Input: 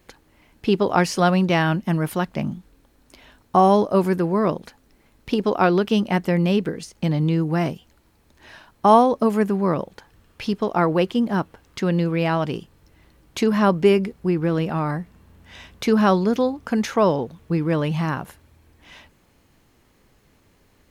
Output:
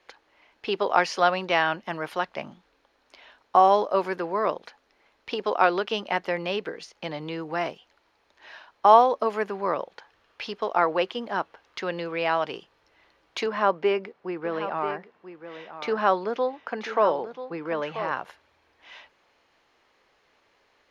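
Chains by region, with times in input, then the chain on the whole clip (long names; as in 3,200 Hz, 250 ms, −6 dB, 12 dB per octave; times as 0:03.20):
0:13.46–0:18.11: high-pass filter 140 Hz + high-shelf EQ 3,400 Hz −11.5 dB + single-tap delay 986 ms −11.5 dB
whole clip: three-way crossover with the lows and the highs turned down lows −22 dB, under 440 Hz, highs −23 dB, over 5,600 Hz; notch filter 7,800 Hz, Q 8.3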